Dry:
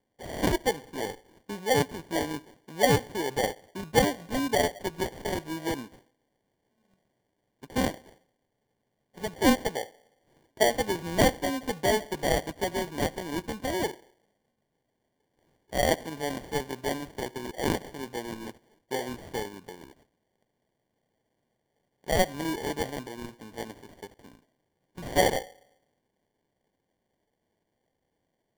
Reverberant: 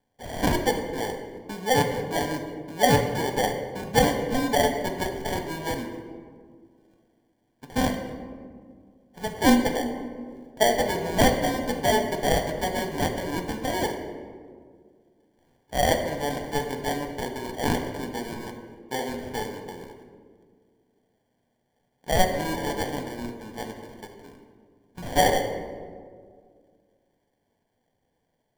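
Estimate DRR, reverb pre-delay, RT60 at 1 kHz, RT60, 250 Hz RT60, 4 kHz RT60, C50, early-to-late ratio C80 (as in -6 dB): 4.0 dB, 4 ms, 1.7 s, 2.0 s, 2.5 s, 0.95 s, 7.0 dB, 8.0 dB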